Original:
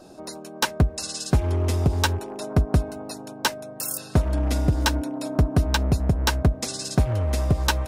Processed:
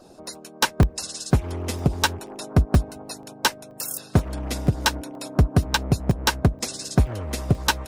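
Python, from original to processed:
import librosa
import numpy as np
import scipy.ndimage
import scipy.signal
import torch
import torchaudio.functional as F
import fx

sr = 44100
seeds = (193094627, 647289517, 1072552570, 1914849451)

y = fx.hpss(x, sr, part='harmonic', gain_db=-11)
y = fx.buffer_crackle(y, sr, first_s=0.35, period_s=0.48, block=64, kind='zero')
y = y * 10.0 ** (2.5 / 20.0)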